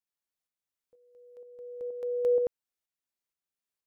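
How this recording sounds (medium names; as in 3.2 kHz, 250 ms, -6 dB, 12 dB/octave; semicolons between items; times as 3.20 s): tremolo saw up 2.1 Hz, depth 45%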